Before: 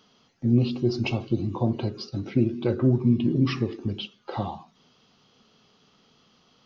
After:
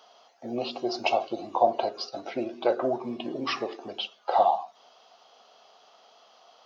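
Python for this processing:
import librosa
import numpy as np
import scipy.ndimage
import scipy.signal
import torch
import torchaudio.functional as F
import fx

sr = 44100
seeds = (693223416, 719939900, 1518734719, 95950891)

y = fx.highpass_res(x, sr, hz=680.0, q=4.9)
y = fx.peak_eq(y, sr, hz=2200.0, db=-2.5, octaves=0.77)
y = y * librosa.db_to_amplitude(3.0)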